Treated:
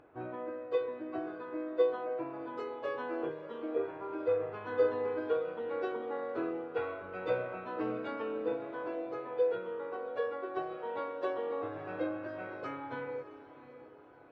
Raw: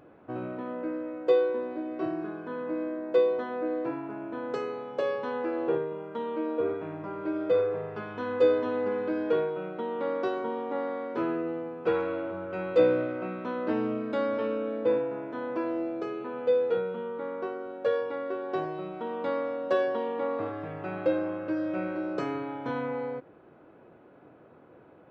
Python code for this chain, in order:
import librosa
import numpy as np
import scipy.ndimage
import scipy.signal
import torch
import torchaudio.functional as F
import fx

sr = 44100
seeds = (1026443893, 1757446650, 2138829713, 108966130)

y = fx.peak_eq(x, sr, hz=200.0, db=-12.5, octaves=0.99)
y = fx.echo_diffused(y, sr, ms=1072, feedback_pct=46, wet_db=-14.0)
y = fx.stretch_vocoder_free(y, sr, factor=0.57)
y = fx.lowpass(y, sr, hz=3000.0, slope=6)
y = fx.notch(y, sr, hz=540.0, q=12.0)